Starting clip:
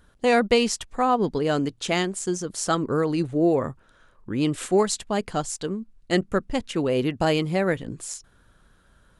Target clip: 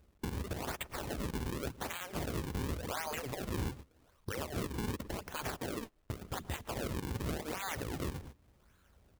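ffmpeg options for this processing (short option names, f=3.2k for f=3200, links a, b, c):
-filter_complex "[0:a]afftfilt=real='re*lt(hypot(re,im),0.112)':imag='im*lt(hypot(re,im),0.112)':win_size=1024:overlap=0.75,acrusher=samples=39:mix=1:aa=0.000001:lfo=1:lforange=62.4:lforate=0.88,highpass=f=50:p=1,highshelf=f=8k:g=5.5,asplit=2[a][b];[b]adelay=111,lowpass=f=1.1k:p=1,volume=-21.5dB,asplit=2[c][d];[d]adelay=111,lowpass=f=1.1k:p=1,volume=0.53,asplit=2[e][f];[f]adelay=111,lowpass=f=1.1k:p=1,volume=0.53,asplit=2[g][h];[h]adelay=111,lowpass=f=1.1k:p=1,volume=0.53[i];[a][c][e][g][i]amix=inputs=5:normalize=0,acrusher=bits=10:mix=0:aa=0.000001,agate=range=-22dB:threshold=-52dB:ratio=16:detection=peak,equalizer=f=70:w=1.6:g=9.5,acompressor=threshold=-37dB:ratio=6,alimiter=level_in=15dB:limit=-24dB:level=0:latency=1:release=429,volume=-15dB,volume=13.5dB"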